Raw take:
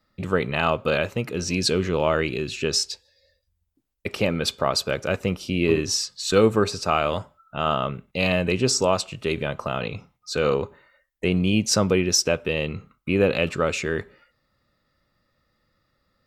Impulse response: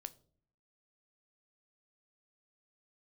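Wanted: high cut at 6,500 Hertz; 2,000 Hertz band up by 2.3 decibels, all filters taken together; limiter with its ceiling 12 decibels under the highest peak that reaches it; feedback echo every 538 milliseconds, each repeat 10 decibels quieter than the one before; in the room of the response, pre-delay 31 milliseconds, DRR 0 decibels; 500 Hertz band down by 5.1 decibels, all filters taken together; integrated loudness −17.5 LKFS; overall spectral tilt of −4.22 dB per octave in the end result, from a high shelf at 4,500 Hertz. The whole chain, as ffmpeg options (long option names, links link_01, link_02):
-filter_complex "[0:a]lowpass=6500,equalizer=frequency=500:width_type=o:gain=-6.5,equalizer=frequency=2000:width_type=o:gain=5.5,highshelf=frequency=4500:gain=-7.5,alimiter=limit=-19dB:level=0:latency=1,aecho=1:1:538|1076|1614|2152:0.316|0.101|0.0324|0.0104,asplit=2[link_01][link_02];[1:a]atrim=start_sample=2205,adelay=31[link_03];[link_02][link_03]afir=irnorm=-1:irlink=0,volume=4.5dB[link_04];[link_01][link_04]amix=inputs=2:normalize=0,volume=10.5dB"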